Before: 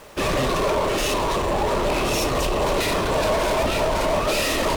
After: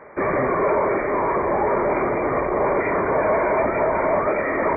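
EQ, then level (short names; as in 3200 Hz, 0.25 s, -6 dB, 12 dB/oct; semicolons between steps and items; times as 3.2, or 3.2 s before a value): HPF 230 Hz 6 dB/oct; brick-wall FIR low-pass 2400 Hz; bell 390 Hz +3 dB 0.28 oct; +2.5 dB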